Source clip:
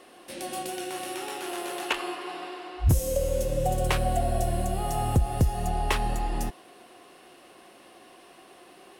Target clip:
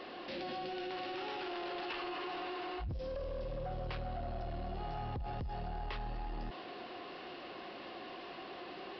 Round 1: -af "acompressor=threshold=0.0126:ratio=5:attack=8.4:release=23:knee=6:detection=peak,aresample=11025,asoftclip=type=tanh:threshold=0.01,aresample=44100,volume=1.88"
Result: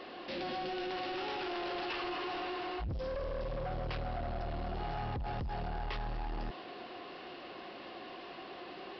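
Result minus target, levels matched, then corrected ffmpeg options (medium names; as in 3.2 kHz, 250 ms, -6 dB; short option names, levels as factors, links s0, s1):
compression: peak gain reduction -6 dB
-af "acompressor=threshold=0.00531:ratio=5:attack=8.4:release=23:knee=6:detection=peak,aresample=11025,asoftclip=type=tanh:threshold=0.01,aresample=44100,volume=1.88"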